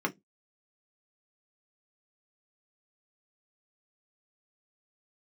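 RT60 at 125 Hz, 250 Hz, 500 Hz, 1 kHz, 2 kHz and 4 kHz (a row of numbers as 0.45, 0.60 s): 0.25, 0.25, 0.20, 0.10, 0.15, 0.15 s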